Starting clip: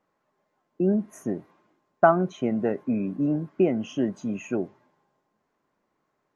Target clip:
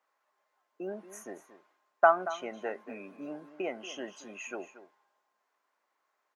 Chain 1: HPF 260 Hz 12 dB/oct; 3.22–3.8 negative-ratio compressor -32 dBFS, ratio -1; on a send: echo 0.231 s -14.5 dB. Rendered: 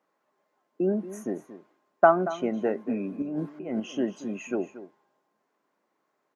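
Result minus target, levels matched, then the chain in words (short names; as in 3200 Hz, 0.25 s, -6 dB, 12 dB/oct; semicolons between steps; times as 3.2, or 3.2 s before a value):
250 Hz band +9.5 dB
HPF 810 Hz 12 dB/oct; 3.22–3.8 negative-ratio compressor -32 dBFS, ratio -1; on a send: echo 0.231 s -14.5 dB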